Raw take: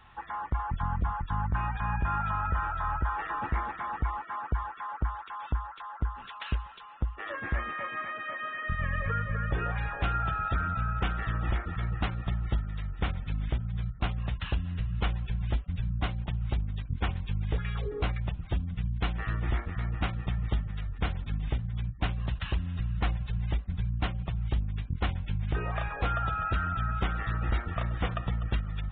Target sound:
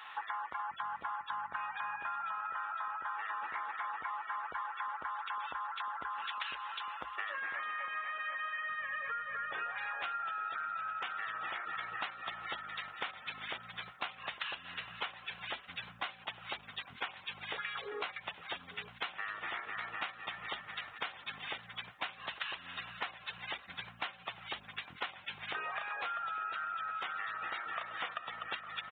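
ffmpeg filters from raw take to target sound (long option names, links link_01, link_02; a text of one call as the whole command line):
ffmpeg -i in.wav -filter_complex "[0:a]highpass=1000,acompressor=threshold=-47dB:ratio=10,asplit=2[link_01][link_02];[link_02]adelay=856,lowpass=frequency=2500:poles=1,volume=-15.5dB,asplit=2[link_03][link_04];[link_04]adelay=856,lowpass=frequency=2500:poles=1,volume=0.38,asplit=2[link_05][link_06];[link_06]adelay=856,lowpass=frequency=2500:poles=1,volume=0.38[link_07];[link_03][link_05][link_07]amix=inputs=3:normalize=0[link_08];[link_01][link_08]amix=inputs=2:normalize=0,volume=10.5dB" out.wav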